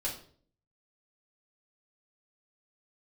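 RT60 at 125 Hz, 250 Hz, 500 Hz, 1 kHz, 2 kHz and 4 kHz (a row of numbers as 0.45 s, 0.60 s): 0.75 s, 0.70 s, 0.60 s, 0.45 s, 0.40 s, 0.40 s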